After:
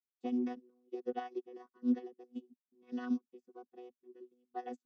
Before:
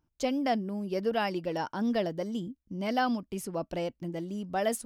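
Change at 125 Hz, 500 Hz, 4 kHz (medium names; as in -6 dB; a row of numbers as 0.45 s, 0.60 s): under -25 dB, -13.5 dB, under -20 dB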